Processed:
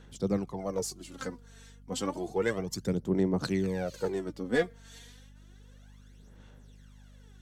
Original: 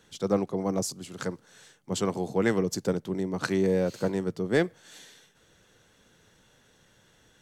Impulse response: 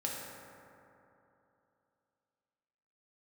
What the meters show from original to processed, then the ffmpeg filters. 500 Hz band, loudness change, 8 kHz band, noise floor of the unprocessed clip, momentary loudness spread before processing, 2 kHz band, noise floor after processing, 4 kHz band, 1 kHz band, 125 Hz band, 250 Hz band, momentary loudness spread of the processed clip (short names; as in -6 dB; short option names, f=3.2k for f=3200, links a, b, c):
-4.0 dB, -3.5 dB, -4.0 dB, -63 dBFS, 10 LU, -3.0 dB, -54 dBFS, -3.0 dB, -4.0 dB, -3.0 dB, -3.5 dB, 12 LU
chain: -af "aphaser=in_gain=1:out_gain=1:delay=4.4:decay=0.67:speed=0.31:type=sinusoidal,aeval=exprs='val(0)+0.00501*(sin(2*PI*50*n/s)+sin(2*PI*2*50*n/s)/2+sin(2*PI*3*50*n/s)/3+sin(2*PI*4*50*n/s)/4+sin(2*PI*5*50*n/s)/5)':c=same,volume=-6dB"